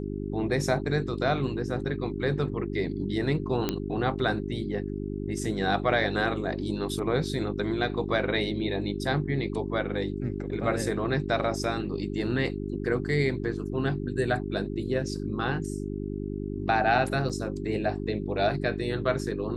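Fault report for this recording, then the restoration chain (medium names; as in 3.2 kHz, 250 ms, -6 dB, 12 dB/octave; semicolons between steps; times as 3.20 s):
hum 50 Hz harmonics 8 -33 dBFS
3.69 s: pop -11 dBFS
17.29–17.30 s: dropout 6.4 ms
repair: de-click; de-hum 50 Hz, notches 8; interpolate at 17.29 s, 6.4 ms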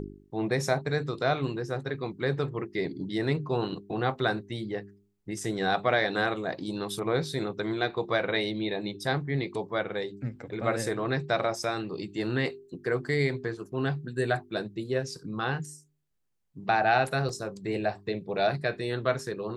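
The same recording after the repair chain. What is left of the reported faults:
nothing left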